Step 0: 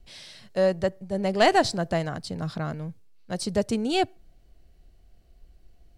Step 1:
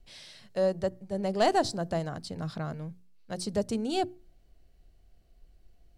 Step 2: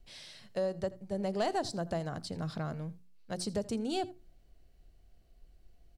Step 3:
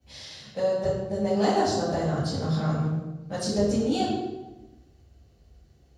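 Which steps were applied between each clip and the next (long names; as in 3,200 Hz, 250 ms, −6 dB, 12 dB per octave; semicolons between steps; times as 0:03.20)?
mains-hum notches 60/120/180/240/300/360 Hz; dynamic equaliser 2,200 Hz, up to −8 dB, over −42 dBFS, Q 1.2; level −4 dB
downward compressor 2.5 to 1, threshold −30 dBFS, peak gain reduction 7.5 dB; single-tap delay 82 ms −20.5 dB; level −1 dB
convolution reverb RT60 1.1 s, pre-delay 3 ms, DRR −12 dB; level −5 dB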